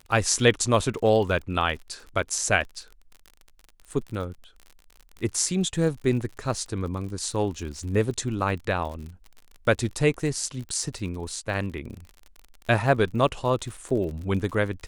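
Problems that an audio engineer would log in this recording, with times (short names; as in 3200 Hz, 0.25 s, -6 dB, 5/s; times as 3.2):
crackle 46/s -34 dBFS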